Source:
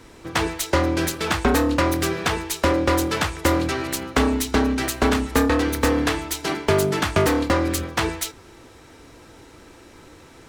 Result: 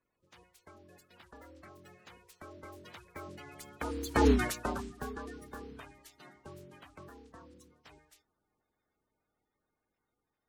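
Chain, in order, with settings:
spectral magnitudes quantised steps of 30 dB
source passing by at 0:04.30, 29 m/s, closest 1.8 metres

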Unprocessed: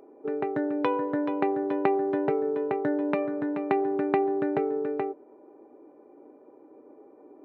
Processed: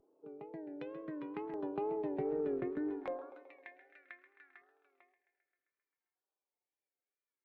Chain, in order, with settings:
source passing by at 0:02.31, 15 m/s, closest 1.9 metres
high-pass filter sweep 140 Hz → 1,900 Hz, 0:02.65–0:03.42
reversed playback
downward compressor 8 to 1, threshold −36 dBFS, peak gain reduction 14 dB
reversed playback
tape wow and flutter 110 cents
on a send: feedback echo with a high-pass in the loop 132 ms, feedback 65%, high-pass 200 Hz, level −14 dB
on the sum: auto-filter notch saw down 0.65 Hz 520–2,400 Hz
tube saturation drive 28 dB, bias 0.2
level +4 dB

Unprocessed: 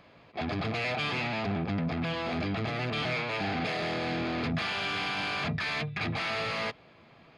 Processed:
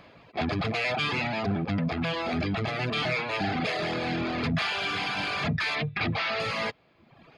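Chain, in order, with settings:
0:05.75–0:06.40: low-pass filter 5,300 Hz 24 dB per octave
reverb reduction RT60 0.99 s
level +5 dB

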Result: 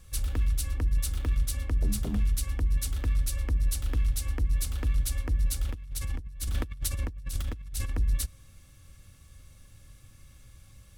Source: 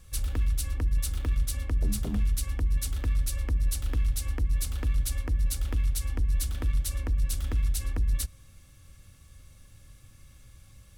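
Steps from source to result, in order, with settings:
0:05.69–0:07.90: compressor whose output falls as the input rises −31 dBFS, ratio −0.5

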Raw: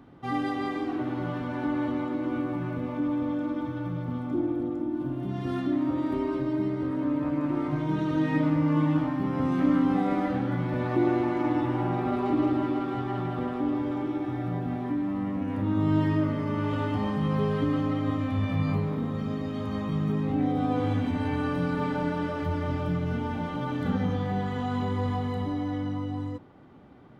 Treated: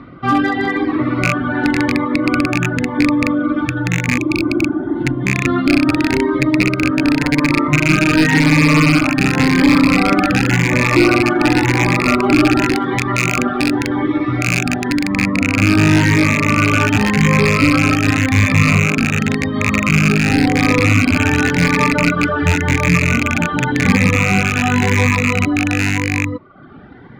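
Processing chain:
loose part that buzzes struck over −29 dBFS, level −17 dBFS
Chebyshev low-pass filter 4,400 Hz, order 3
flat-topped bell 1,600 Hz +8.5 dB 1.2 octaves
hard clipping −19.5 dBFS, distortion −13 dB
0:04.21–0:04.98: healed spectral selection 220–2,200 Hz after
0:12.74–0:15.08: high-shelf EQ 3,400 Hz +8.5 dB
reverb reduction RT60 0.66 s
boost into a limiter +16.5 dB
phaser whose notches keep moving one way rising 0.91 Hz
level −1 dB

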